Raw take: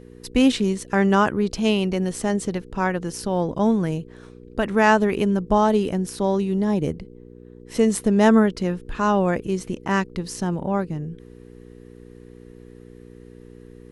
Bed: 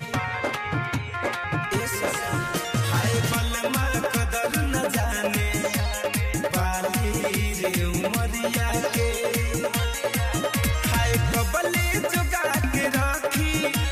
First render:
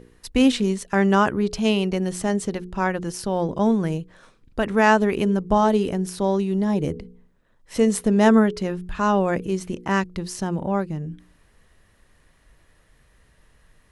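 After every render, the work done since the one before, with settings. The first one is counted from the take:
hum removal 60 Hz, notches 8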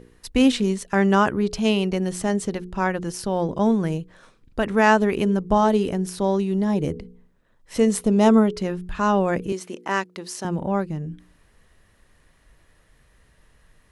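0:08.01–0:08.56: parametric band 1,700 Hz −14.5 dB 0.26 octaves
0:09.52–0:10.45: high-pass filter 340 Hz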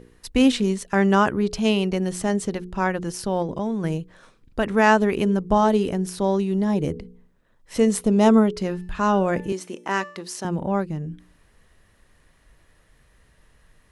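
0:03.42–0:03.84: downward compressor 3 to 1, threshold −23 dBFS
0:08.57–0:10.22: hum removal 292.5 Hz, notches 39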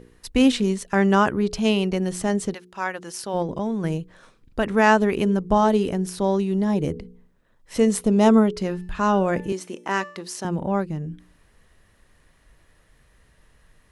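0:02.53–0:03.33: high-pass filter 1,500 Hz → 570 Hz 6 dB per octave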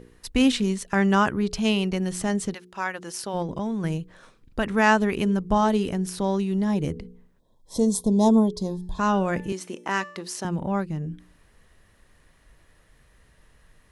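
0:07.39–0:08.99: gain on a spectral selection 1,100–3,200 Hz −22 dB
dynamic equaliser 480 Hz, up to −5 dB, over −32 dBFS, Q 0.77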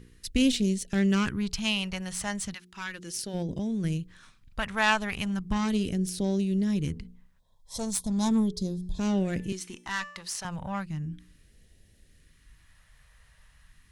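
one-sided soft clipper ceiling −22 dBFS
all-pass phaser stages 2, 0.36 Hz, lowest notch 310–1,100 Hz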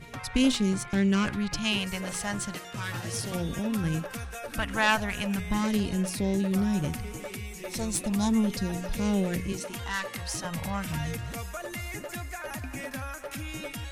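mix in bed −13.5 dB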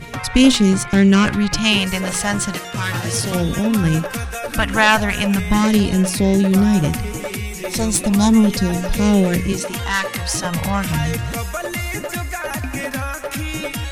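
level +12 dB
brickwall limiter −1 dBFS, peak gain reduction 2.5 dB

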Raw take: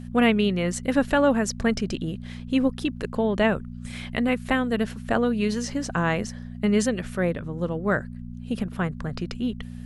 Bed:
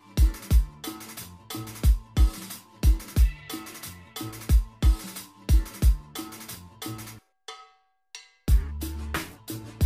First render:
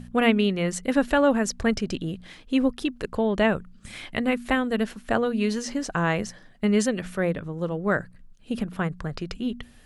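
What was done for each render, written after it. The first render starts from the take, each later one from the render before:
hum removal 60 Hz, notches 4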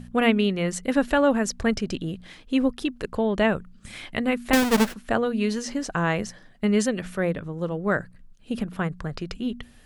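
0:04.53–0:04.94: each half-wave held at its own peak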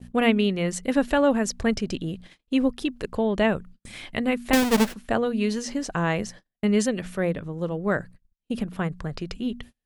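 noise gate −42 dBFS, range −35 dB
parametric band 1,400 Hz −3 dB 0.7 octaves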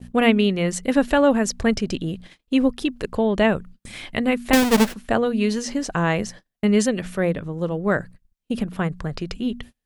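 level +3.5 dB

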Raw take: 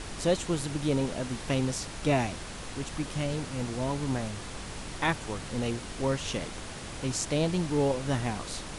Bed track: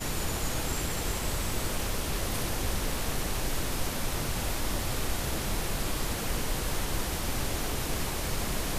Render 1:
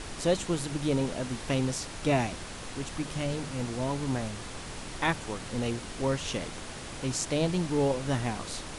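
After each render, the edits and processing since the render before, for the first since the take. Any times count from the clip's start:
hum removal 50 Hz, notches 4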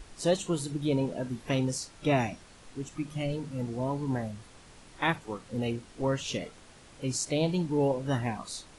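noise reduction from a noise print 13 dB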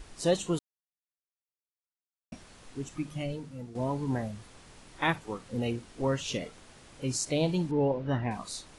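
0:00.59–0:02.32: silence
0:02.98–0:03.75: fade out, to −11.5 dB
0:07.71–0:08.31: high-frequency loss of the air 240 metres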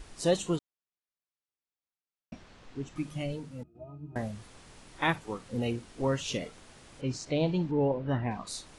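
0:00.56–0:02.96: high-frequency loss of the air 110 metres
0:03.63–0:04.16: resonances in every octave D#, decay 0.18 s
0:07.01–0:08.47: high-frequency loss of the air 140 metres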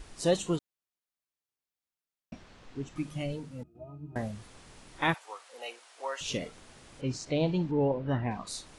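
0:05.14–0:06.21: high-pass filter 630 Hz 24 dB per octave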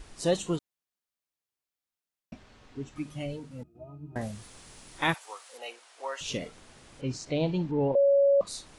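0:02.34–0:03.51: notch comb filter 170 Hz
0:04.21–0:05.58: high-shelf EQ 4,700 Hz +9.5 dB
0:07.95–0:08.41: beep over 559 Hz −18 dBFS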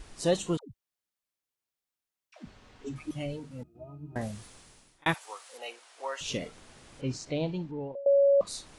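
0:00.57–0:03.11: all-pass dispersion lows, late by 143 ms, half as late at 390 Hz
0:04.38–0:05.06: fade out
0:07.10–0:08.06: fade out, to −22 dB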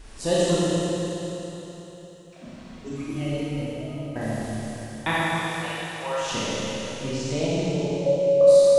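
four-comb reverb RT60 3.8 s, combs from 28 ms, DRR −8.5 dB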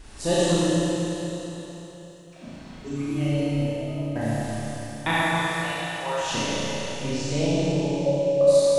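flutter between parallel walls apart 6 metres, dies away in 0.41 s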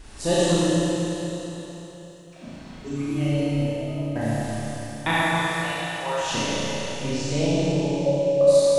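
level +1 dB

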